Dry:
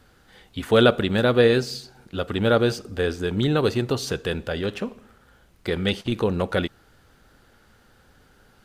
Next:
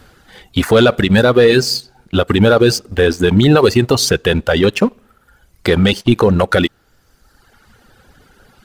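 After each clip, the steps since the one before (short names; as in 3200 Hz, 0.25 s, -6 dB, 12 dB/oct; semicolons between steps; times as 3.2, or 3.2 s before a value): reverb removal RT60 1.4 s; sample leveller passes 1; maximiser +14 dB; gain -1 dB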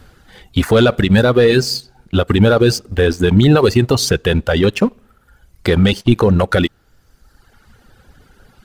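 low shelf 150 Hz +7 dB; gain -2.5 dB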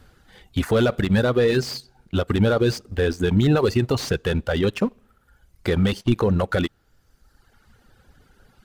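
slew limiter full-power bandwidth 410 Hz; gain -7.5 dB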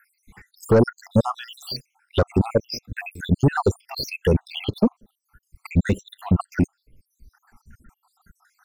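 random spectral dropouts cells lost 75%; sine folder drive 4 dB, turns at -10 dBFS; envelope phaser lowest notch 510 Hz, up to 3300 Hz, full sweep at -18 dBFS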